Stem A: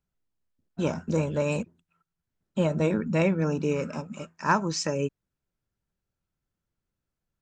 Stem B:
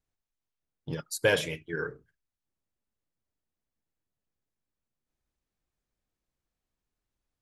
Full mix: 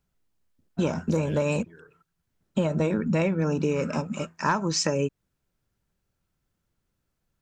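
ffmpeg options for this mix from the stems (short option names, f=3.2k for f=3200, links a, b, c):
-filter_complex "[0:a]acontrast=54,volume=1dB[a];[1:a]volume=-18.5dB[b];[a][b]amix=inputs=2:normalize=0,acompressor=threshold=-21dB:ratio=6"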